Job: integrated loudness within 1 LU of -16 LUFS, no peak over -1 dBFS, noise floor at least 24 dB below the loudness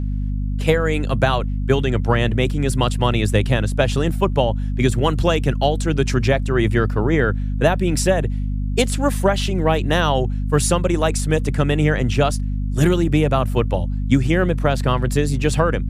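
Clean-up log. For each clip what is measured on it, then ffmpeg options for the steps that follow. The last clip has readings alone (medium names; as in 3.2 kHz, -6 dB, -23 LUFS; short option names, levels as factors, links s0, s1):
hum 50 Hz; highest harmonic 250 Hz; hum level -19 dBFS; loudness -19.5 LUFS; peak level -1.5 dBFS; loudness target -16.0 LUFS
-> -af "bandreject=f=50:t=h:w=6,bandreject=f=100:t=h:w=6,bandreject=f=150:t=h:w=6,bandreject=f=200:t=h:w=6,bandreject=f=250:t=h:w=6"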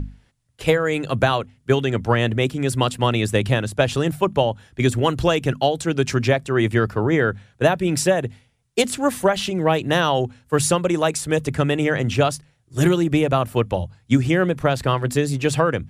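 hum not found; loudness -20.5 LUFS; peak level -3.5 dBFS; loudness target -16.0 LUFS
-> -af "volume=1.68,alimiter=limit=0.891:level=0:latency=1"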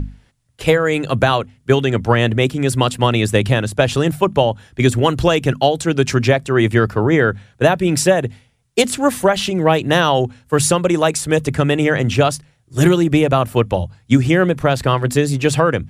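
loudness -16.5 LUFS; peak level -1.0 dBFS; noise floor -57 dBFS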